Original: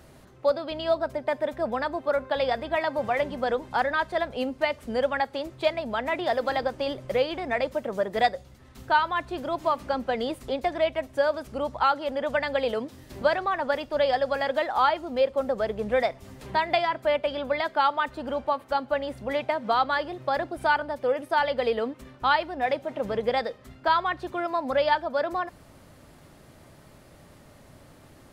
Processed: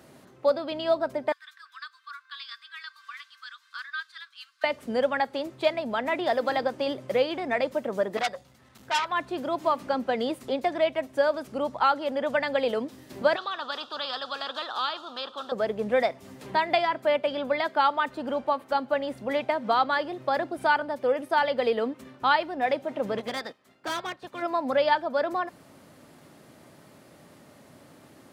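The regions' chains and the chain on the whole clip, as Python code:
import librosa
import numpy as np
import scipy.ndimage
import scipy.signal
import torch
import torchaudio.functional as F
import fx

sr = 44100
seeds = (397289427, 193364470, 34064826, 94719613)

y = fx.chain(x, sr, fx.cheby_ripple_highpass(hz=1100.0, ripple_db=9),
    fx.dynamic_eq(hz=1700.0, q=1.7, threshold_db=-47.0, ratio=4.0, max_db=-5), at=(1.32, 4.64))
y = fx.chain(y, sr, fx.peak_eq(hz=320.0, db=-8.0, octaves=1.1),
    fx.transformer_sat(knee_hz=4000.0), at=(8.17, 9.12))
y = fx.chain(y, sr, fx.double_bandpass(hz=2100.0, octaves=1.5),
    fx.spectral_comp(ratio=2.0), at=(13.36, 15.52))
y = fx.spec_clip(y, sr, under_db=15, at=(23.17, 24.41), fade=0.02)
y = fx.clip_hard(y, sr, threshold_db=-23.5, at=(23.17, 24.41), fade=0.02)
y = fx.upward_expand(y, sr, threshold_db=-45.0, expansion=1.5, at=(23.17, 24.41), fade=0.02)
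y = scipy.signal.sosfilt(scipy.signal.butter(2, 150.0, 'highpass', fs=sr, output='sos'), y)
y = fx.peak_eq(y, sr, hz=260.0, db=2.5, octaves=0.93)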